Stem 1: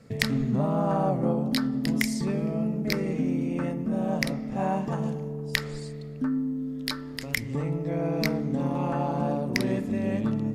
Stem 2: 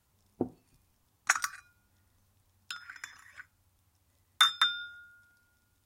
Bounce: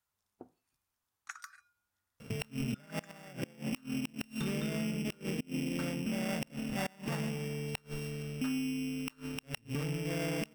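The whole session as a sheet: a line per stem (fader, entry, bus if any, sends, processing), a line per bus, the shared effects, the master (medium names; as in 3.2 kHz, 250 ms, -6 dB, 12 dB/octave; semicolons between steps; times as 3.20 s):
+2.0 dB, 2.20 s, no send, sorted samples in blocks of 16 samples; inverted gate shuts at -16 dBFS, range -29 dB
-11.5 dB, 0.00 s, no send, bass shelf 420 Hz -12 dB; compression, threshold -30 dBFS, peak gain reduction 11.5 dB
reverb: none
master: peaking EQ 1.4 kHz +4 dB 0.68 oct; saturation -17.5 dBFS, distortion -18 dB; compression 2:1, threshold -39 dBFS, peak gain reduction 9 dB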